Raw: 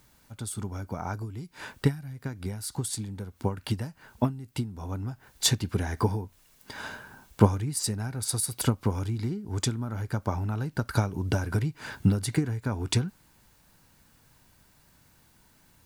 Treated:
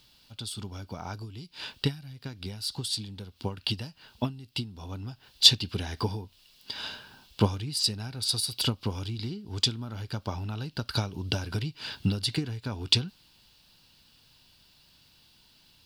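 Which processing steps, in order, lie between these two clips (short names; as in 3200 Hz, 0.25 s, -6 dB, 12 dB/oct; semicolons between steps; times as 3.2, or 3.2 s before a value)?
band shelf 3700 Hz +15 dB 1.2 oct; gain -4.5 dB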